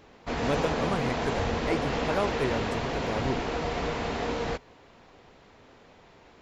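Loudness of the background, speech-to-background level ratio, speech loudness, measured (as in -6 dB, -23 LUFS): -30.5 LUFS, -2.5 dB, -33.0 LUFS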